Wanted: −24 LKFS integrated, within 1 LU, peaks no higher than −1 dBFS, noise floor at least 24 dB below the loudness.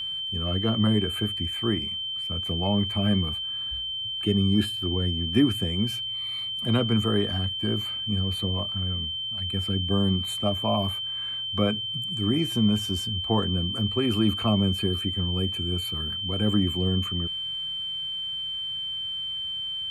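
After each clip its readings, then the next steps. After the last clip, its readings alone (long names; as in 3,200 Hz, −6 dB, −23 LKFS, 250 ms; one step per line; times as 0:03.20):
interfering tone 3,100 Hz; level of the tone −29 dBFS; integrated loudness −26.0 LKFS; sample peak −9.0 dBFS; target loudness −24.0 LKFS
→ notch filter 3,100 Hz, Q 30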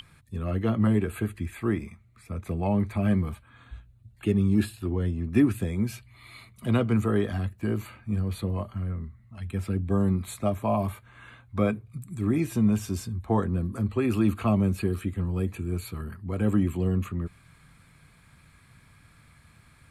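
interfering tone none found; integrated loudness −27.5 LKFS; sample peak −9.5 dBFS; target loudness −24.0 LKFS
→ level +3.5 dB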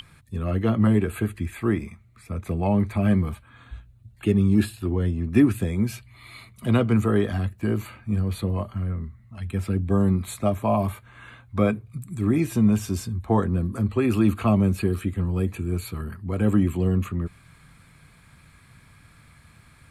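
integrated loudness −24.0 LKFS; sample peak −6.0 dBFS; background noise floor −54 dBFS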